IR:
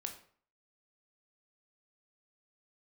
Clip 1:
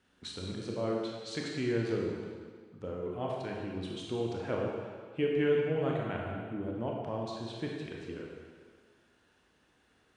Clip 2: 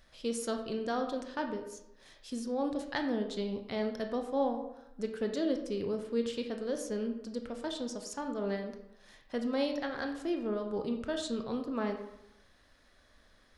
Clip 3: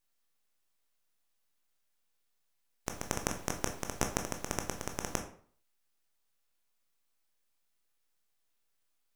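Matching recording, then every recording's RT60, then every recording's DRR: 3; 1.7, 0.85, 0.50 seconds; −2.0, 4.5, 4.0 decibels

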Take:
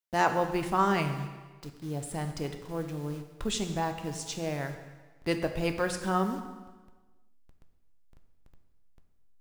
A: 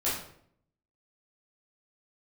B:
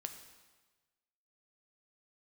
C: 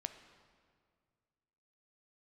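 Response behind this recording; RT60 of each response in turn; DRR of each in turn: B; 0.65, 1.3, 2.0 seconds; −9.5, 6.0, 8.5 decibels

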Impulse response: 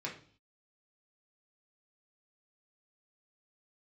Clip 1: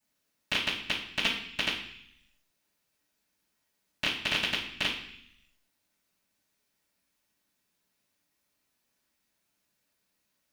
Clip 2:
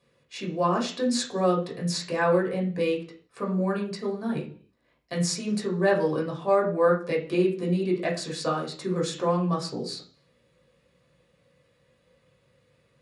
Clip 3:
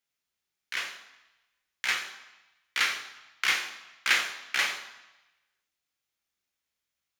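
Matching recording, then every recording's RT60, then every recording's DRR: 2; 0.65, 0.45, 1.0 seconds; −16.0, −3.0, 5.5 decibels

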